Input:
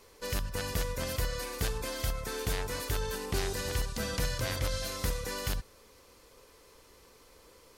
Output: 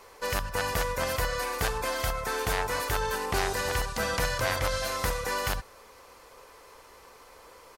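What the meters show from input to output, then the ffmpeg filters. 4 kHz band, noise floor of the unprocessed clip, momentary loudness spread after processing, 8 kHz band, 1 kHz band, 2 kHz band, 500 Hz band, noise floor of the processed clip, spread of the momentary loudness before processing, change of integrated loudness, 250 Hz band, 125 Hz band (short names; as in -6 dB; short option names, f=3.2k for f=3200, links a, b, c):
+3.5 dB, -59 dBFS, 3 LU, +3.0 dB, +11.0 dB, +8.5 dB, +5.5 dB, -53 dBFS, 3 LU, +5.0 dB, +0.5 dB, 0.0 dB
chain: -af "firequalizer=gain_entry='entry(260,0);entry(760,12);entry(3500,3)':delay=0.05:min_phase=1"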